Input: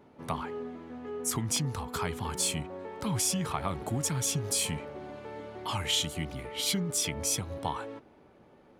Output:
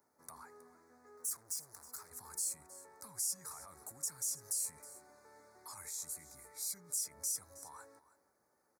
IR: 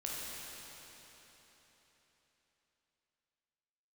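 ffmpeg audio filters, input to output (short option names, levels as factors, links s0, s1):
-filter_complex "[0:a]alimiter=level_in=1.58:limit=0.0631:level=0:latency=1:release=14,volume=0.631,equalizer=f=64:w=0.88:g=14.5,asettb=1/sr,asplit=3[s0][s1][s2];[s0]atrim=end=1.174[s3];[s1]atrim=start=1.17:end=2.11,asetpts=PTS-STARTPTS,afade=t=in:d=0.004:c=qsin,afade=t=out:st=0.936:d=0.004:c=qsin,asoftclip=type=hard:threshold=0.0178[s4];[s2]atrim=start=2.106[s5];[s3][s4]acrossfade=d=0.004:c1=hsin:c2=qsin[s6];[s6][s5]acrossfade=d=0.004:c1=qsin:c2=hsin,asuperstop=centerf=3000:order=4:qfactor=0.85,aderivative,aecho=1:1:318:0.133,volume=1.26"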